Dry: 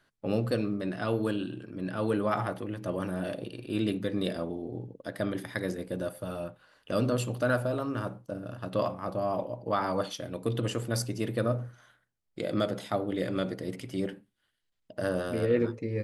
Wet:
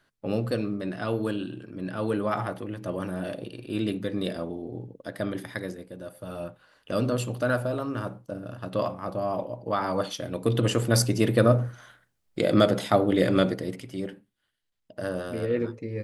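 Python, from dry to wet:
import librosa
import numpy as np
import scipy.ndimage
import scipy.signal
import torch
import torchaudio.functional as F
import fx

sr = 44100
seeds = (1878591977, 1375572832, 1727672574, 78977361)

y = fx.gain(x, sr, db=fx.line((5.51, 1.0), (5.96, -8.0), (6.42, 1.5), (9.79, 1.5), (10.99, 9.0), (13.42, 9.0), (13.87, -1.0)))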